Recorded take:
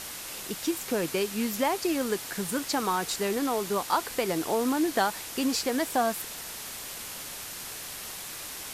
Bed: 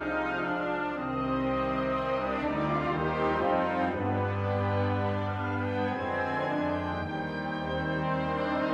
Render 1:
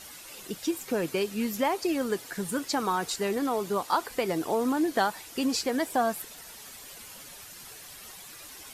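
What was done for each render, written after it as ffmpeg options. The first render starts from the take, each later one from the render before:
-af "afftdn=nr=10:nf=-40"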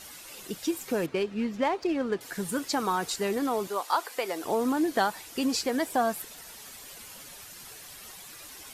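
-filter_complex "[0:a]asettb=1/sr,asplit=3[a][b][c];[a]atrim=end=1.064[d];[b]atrim=start=1.06:end=2.21,asetpts=PTS-STARTPTS,afade=t=in:d=0.004:c=qsin,afade=t=out:st=1.146:d=0.004:c=qsin,adynamicsmooth=sensitivity=3.5:basefreq=2.5k[e];[c]atrim=start=2.206[f];[d][e]acrossfade=d=0.004:c1=hsin:c2=qsin[g];[g][f]acrossfade=d=0.004:c1=qsin:c2=hsin,asettb=1/sr,asplit=3[h][i][j];[h]atrim=end=3.674[k];[i]atrim=start=3.67:end=4.44,asetpts=PTS-STARTPTS,afade=t=in:d=0.004:c=qsin,afade=t=out:st=0.766:d=0.004:c=qsin,highpass=470[l];[j]atrim=start=4.436[m];[k][l]acrossfade=d=0.004:c1=hsin:c2=qsin[n];[n][m]acrossfade=d=0.004:c1=qsin:c2=hsin"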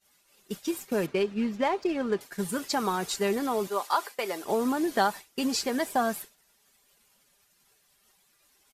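-af "agate=range=-33dB:threshold=-32dB:ratio=3:detection=peak,aecho=1:1:5:0.33"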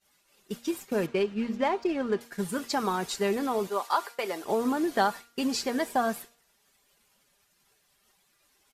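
-af "highshelf=f=6k:g=-4.5,bandreject=f=234.9:t=h:w=4,bandreject=f=469.8:t=h:w=4,bandreject=f=704.7:t=h:w=4,bandreject=f=939.6:t=h:w=4,bandreject=f=1.1745k:t=h:w=4,bandreject=f=1.4094k:t=h:w=4,bandreject=f=1.6443k:t=h:w=4,bandreject=f=1.8792k:t=h:w=4,bandreject=f=2.1141k:t=h:w=4,bandreject=f=2.349k:t=h:w=4,bandreject=f=2.5839k:t=h:w=4,bandreject=f=2.8188k:t=h:w=4,bandreject=f=3.0537k:t=h:w=4,bandreject=f=3.2886k:t=h:w=4,bandreject=f=3.5235k:t=h:w=4,bandreject=f=3.7584k:t=h:w=4,bandreject=f=3.9933k:t=h:w=4,bandreject=f=4.2282k:t=h:w=4,bandreject=f=4.4631k:t=h:w=4,bandreject=f=4.698k:t=h:w=4,bandreject=f=4.9329k:t=h:w=4,bandreject=f=5.1678k:t=h:w=4,bandreject=f=5.4027k:t=h:w=4,bandreject=f=5.6376k:t=h:w=4,bandreject=f=5.8725k:t=h:w=4,bandreject=f=6.1074k:t=h:w=4,bandreject=f=6.3423k:t=h:w=4,bandreject=f=6.5772k:t=h:w=4,bandreject=f=6.8121k:t=h:w=4,bandreject=f=7.047k:t=h:w=4,bandreject=f=7.2819k:t=h:w=4,bandreject=f=7.5168k:t=h:w=4,bandreject=f=7.7517k:t=h:w=4,bandreject=f=7.9866k:t=h:w=4"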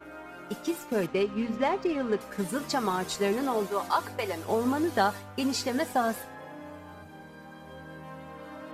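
-filter_complex "[1:a]volume=-14dB[a];[0:a][a]amix=inputs=2:normalize=0"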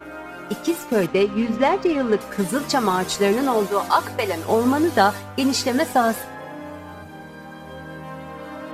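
-af "volume=8.5dB"

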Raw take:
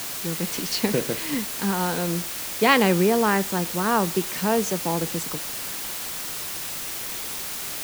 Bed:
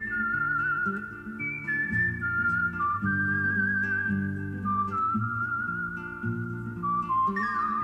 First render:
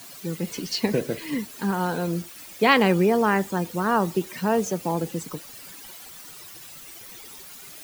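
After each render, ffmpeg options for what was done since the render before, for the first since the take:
-af "afftdn=nr=14:nf=-32"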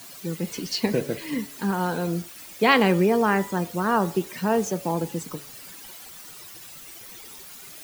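-af "bandreject=f=140.9:t=h:w=4,bandreject=f=281.8:t=h:w=4,bandreject=f=422.7:t=h:w=4,bandreject=f=563.6:t=h:w=4,bandreject=f=704.5:t=h:w=4,bandreject=f=845.4:t=h:w=4,bandreject=f=986.3:t=h:w=4,bandreject=f=1.1272k:t=h:w=4,bandreject=f=1.2681k:t=h:w=4,bandreject=f=1.409k:t=h:w=4,bandreject=f=1.5499k:t=h:w=4,bandreject=f=1.6908k:t=h:w=4,bandreject=f=1.8317k:t=h:w=4,bandreject=f=1.9726k:t=h:w=4,bandreject=f=2.1135k:t=h:w=4,bandreject=f=2.2544k:t=h:w=4,bandreject=f=2.3953k:t=h:w=4,bandreject=f=2.5362k:t=h:w=4,bandreject=f=2.6771k:t=h:w=4,bandreject=f=2.818k:t=h:w=4,bandreject=f=2.9589k:t=h:w=4,bandreject=f=3.0998k:t=h:w=4,bandreject=f=3.2407k:t=h:w=4,bandreject=f=3.3816k:t=h:w=4,bandreject=f=3.5225k:t=h:w=4,bandreject=f=3.6634k:t=h:w=4,bandreject=f=3.8043k:t=h:w=4,bandreject=f=3.9452k:t=h:w=4,bandreject=f=4.0861k:t=h:w=4,bandreject=f=4.227k:t=h:w=4,bandreject=f=4.3679k:t=h:w=4,bandreject=f=4.5088k:t=h:w=4,bandreject=f=4.6497k:t=h:w=4,bandreject=f=4.7906k:t=h:w=4,bandreject=f=4.9315k:t=h:w=4"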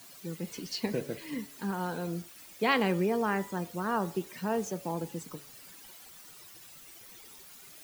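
-af "volume=-8.5dB"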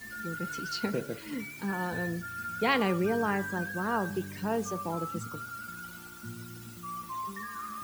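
-filter_complex "[1:a]volume=-12dB[a];[0:a][a]amix=inputs=2:normalize=0"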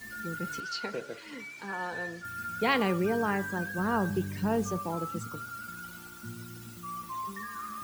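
-filter_complex "[0:a]asettb=1/sr,asplit=3[a][b][c];[a]atrim=end=0.604[d];[b]atrim=start=0.6:end=2.25,asetpts=PTS-STARTPTS,afade=t=in:d=0.004:c=qsin,afade=t=out:st=1.646:d=0.004:c=qsin,acrossover=split=400 7900:gain=0.224 1 0.141[e][f][g];[e][f][g]amix=inputs=3:normalize=0[h];[c]atrim=start=2.246[i];[d][h]acrossfade=d=0.004:c1=hsin:c2=qsin[j];[j][i]acrossfade=d=0.004:c1=qsin:c2=hsin,asettb=1/sr,asplit=3[k][l][m];[k]atrim=end=3.784[n];[l]atrim=start=3.78:end=4.79,asetpts=PTS-STARTPTS,afade=t=in:d=0.004:c=qsin,afade=t=out:st=1.006:d=0.004:c=qsin,lowshelf=f=160:g=11[o];[m]atrim=start=4.786[p];[n][o]acrossfade=d=0.004:c1=hsin:c2=qsin[q];[q][p]acrossfade=d=0.004:c1=qsin:c2=hsin"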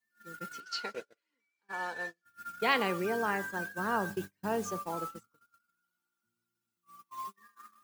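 -af "highpass=f=470:p=1,agate=range=-38dB:threshold=-37dB:ratio=16:detection=peak"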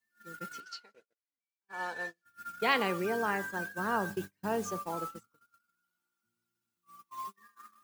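-filter_complex "[0:a]asplit=3[a][b][c];[a]atrim=end=0.8,asetpts=PTS-STARTPTS,afade=t=out:st=0.66:d=0.14:silence=0.0891251[d];[b]atrim=start=0.8:end=1.67,asetpts=PTS-STARTPTS,volume=-21dB[e];[c]atrim=start=1.67,asetpts=PTS-STARTPTS,afade=t=in:d=0.14:silence=0.0891251[f];[d][e][f]concat=n=3:v=0:a=1"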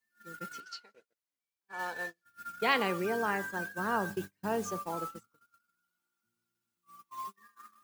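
-filter_complex "[0:a]asettb=1/sr,asplit=3[a][b][c];[a]atrim=end=1.794[d];[b]atrim=start=1.79:end=2.47,asetpts=PTS-STARTPTS,afade=t=in:d=0.004:c=qsin,afade=t=out:st=0.676:d=0.004:c=qsin,acrusher=bits=4:mode=log:mix=0:aa=0.000001[e];[c]atrim=start=2.466[f];[d][e]acrossfade=d=0.004:c1=hsin:c2=qsin[g];[g][f]acrossfade=d=0.004:c1=qsin:c2=hsin"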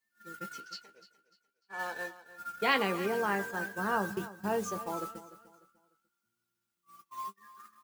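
-filter_complex "[0:a]asplit=2[a][b];[b]adelay=15,volume=-9.5dB[c];[a][c]amix=inputs=2:normalize=0,aecho=1:1:298|596|894:0.158|0.0507|0.0162"

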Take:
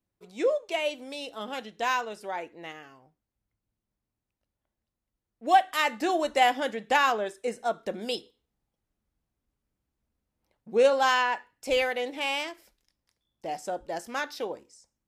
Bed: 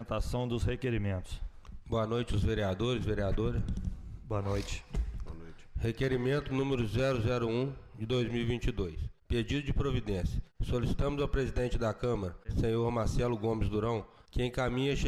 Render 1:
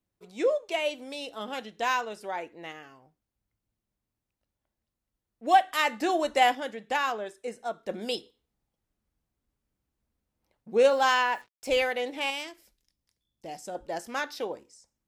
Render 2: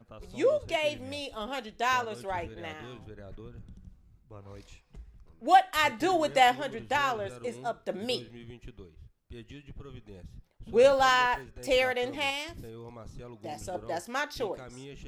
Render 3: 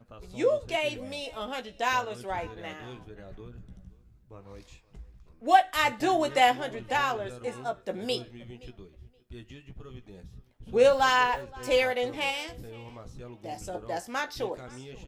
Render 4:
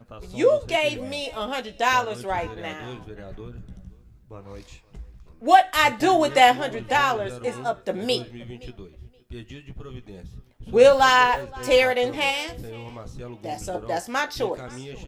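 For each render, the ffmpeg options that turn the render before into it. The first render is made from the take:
-filter_complex "[0:a]asettb=1/sr,asplit=3[a][b][c];[a]atrim=end=10.824[d];[b]atrim=start=10.82:end=11.68,asetpts=PTS-STARTPTS,afade=t=in:d=0.004:c=qsin,afade=t=out:st=0.856:d=0.004:c=qsin,acrusher=bits=8:mix=0:aa=0.5[e];[c]atrim=start=11.676[f];[d][e]acrossfade=d=0.004:c1=hsin:c2=qsin[g];[g][f]acrossfade=d=0.004:c1=qsin:c2=hsin,asettb=1/sr,asplit=3[h][i][j];[h]atrim=end=12.304[k];[i]atrim=start=12.3:end=13.75,asetpts=PTS-STARTPTS,afade=t=in:d=0.004:c=qsin,afade=t=out:st=1.446:d=0.004:c=qsin,equalizer=f=1k:w=0.4:g=-7.5[l];[j]atrim=start=13.746[m];[k][l]acrossfade=d=0.004:c1=hsin:c2=qsin[n];[n][m]acrossfade=d=0.004:c1=qsin:c2=hsin,asplit=3[o][p][q];[o]atrim=end=6.552[r];[p]atrim=start=6.548:end=7.892,asetpts=PTS-STARTPTS,volume=-5dB[s];[q]atrim=start=7.888[t];[r][s]acrossfade=d=0.004:c1=hsin:c2=hsin[u];[u][t]acrossfade=d=0.004:c1=hsin:c2=hsin"
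-filter_complex "[1:a]volume=-14.5dB[a];[0:a][a]amix=inputs=2:normalize=0"
-filter_complex "[0:a]asplit=2[a][b];[b]adelay=16,volume=-8dB[c];[a][c]amix=inputs=2:normalize=0,asplit=2[d][e];[e]adelay=523,lowpass=f=4k:p=1,volume=-22dB,asplit=2[f][g];[g]adelay=523,lowpass=f=4k:p=1,volume=0.21[h];[d][f][h]amix=inputs=3:normalize=0"
-af "volume=6.5dB,alimiter=limit=-3dB:level=0:latency=1"

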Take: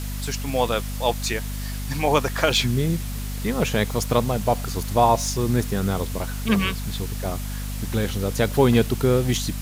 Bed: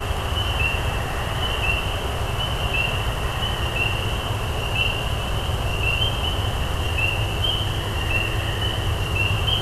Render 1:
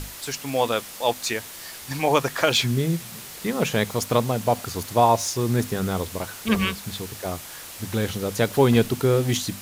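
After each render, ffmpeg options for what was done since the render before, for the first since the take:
-af "bandreject=f=50:t=h:w=6,bandreject=f=100:t=h:w=6,bandreject=f=150:t=h:w=6,bandreject=f=200:t=h:w=6,bandreject=f=250:t=h:w=6"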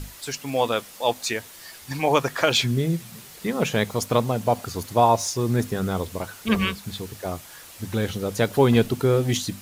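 -af "afftdn=nr=6:nf=-39"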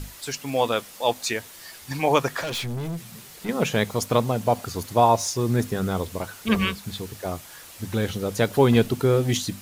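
-filter_complex "[0:a]asettb=1/sr,asplit=3[a][b][c];[a]atrim=end=2.414[d];[b]atrim=start=2.41:end=3.49,asetpts=PTS-STARTPTS,afade=t=in:d=0.004:c=qsin,afade=t=out:st=1.076:d=0.004:c=qsin,aeval=exprs='(tanh(22.4*val(0)+0.2)-tanh(0.2))/22.4':c=same[e];[c]atrim=start=3.486[f];[d][e]acrossfade=d=0.004:c1=hsin:c2=qsin[g];[g][f]acrossfade=d=0.004:c1=qsin:c2=hsin"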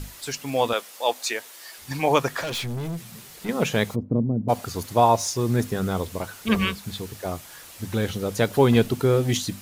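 -filter_complex "[0:a]asettb=1/sr,asplit=3[a][b][c];[a]atrim=end=0.734[d];[b]atrim=start=0.73:end=1.78,asetpts=PTS-STARTPTS,afade=t=in:d=0.004:c=qsin,afade=t=out:st=1.046:d=0.004:c=qsin,highpass=390[e];[c]atrim=start=1.776[f];[d][e]acrossfade=d=0.004:c1=hsin:c2=qsin[g];[g][f]acrossfade=d=0.004:c1=qsin:c2=hsin,asplit=3[h][i][j];[h]afade=t=out:st=3.94:d=0.02[k];[i]lowpass=f=270:t=q:w=1.8,afade=t=in:st=3.94:d=0.02,afade=t=out:st=4.48:d=0.02[l];[j]afade=t=in:st=4.48:d=0.02[m];[k][l][m]amix=inputs=3:normalize=0"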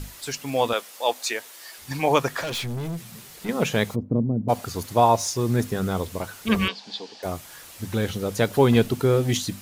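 -filter_complex "[0:a]asettb=1/sr,asplit=3[a][b][c];[a]atrim=end=6.684[d];[b]atrim=start=6.68:end=7.23,asetpts=PTS-STARTPTS,afade=t=in:d=0.004:c=qsin,afade=t=out:st=0.546:d=0.004:c=qsin,highpass=f=270:w=0.5412,highpass=f=270:w=1.3066,equalizer=f=350:t=q:w=4:g=-8,equalizer=f=810:t=q:w=4:g=8,equalizer=f=1.3k:t=q:w=4:g=-9,equalizer=f=2.1k:t=q:w=4:g=-5,equalizer=f=3.2k:t=q:w=4:g=3,equalizer=f=4.7k:t=q:w=4:g=8,lowpass=f=5.6k:w=0.5412,lowpass=f=5.6k:w=1.3066[e];[c]atrim=start=7.226[f];[d][e]acrossfade=d=0.004:c1=hsin:c2=qsin[g];[g][f]acrossfade=d=0.004:c1=qsin:c2=hsin"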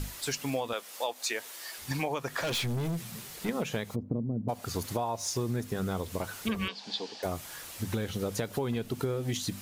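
-af "alimiter=limit=-12.5dB:level=0:latency=1:release=295,acompressor=threshold=-28dB:ratio=10"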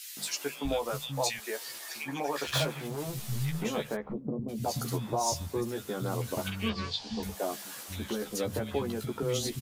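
-filter_complex "[0:a]asplit=2[a][b];[b]adelay=14,volume=-4.5dB[c];[a][c]amix=inputs=2:normalize=0,acrossover=split=200|1900[d][e][f];[e]adelay=170[g];[d]adelay=650[h];[h][g][f]amix=inputs=3:normalize=0"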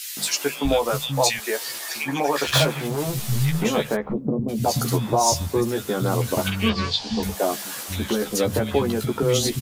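-af "volume=10.5dB"

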